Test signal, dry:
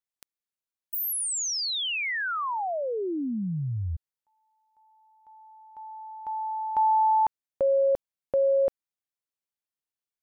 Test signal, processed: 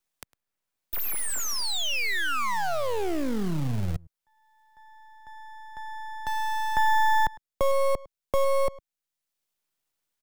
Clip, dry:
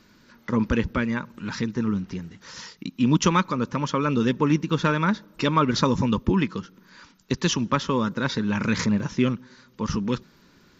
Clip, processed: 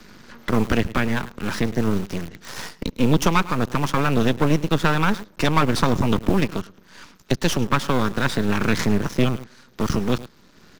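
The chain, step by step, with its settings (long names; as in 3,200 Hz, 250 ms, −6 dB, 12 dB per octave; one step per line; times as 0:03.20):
slap from a distant wall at 18 metres, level −19 dB
half-wave rectification
in parallel at −5 dB: bit-depth reduction 6 bits, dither none
on the sum: multiband upward and downward compressor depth 40%
level +2 dB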